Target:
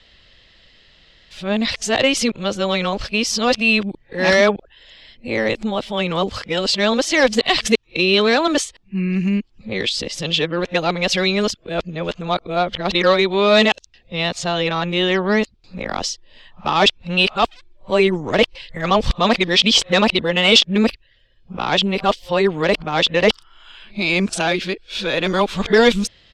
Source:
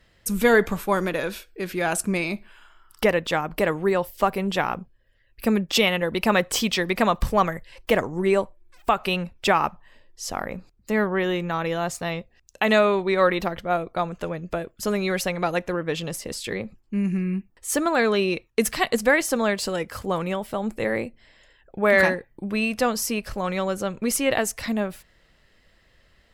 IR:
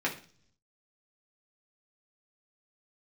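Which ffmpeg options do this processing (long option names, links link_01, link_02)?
-filter_complex "[0:a]areverse,acrossover=split=880|6900[link_01][link_02][link_03];[link_02]asoftclip=type=tanh:threshold=-22dB[link_04];[link_01][link_04][link_03]amix=inputs=3:normalize=0,firequalizer=gain_entry='entry(1600,0);entry(3400,13);entry(13000,-24)':delay=0.05:min_phase=1,volume=5dB"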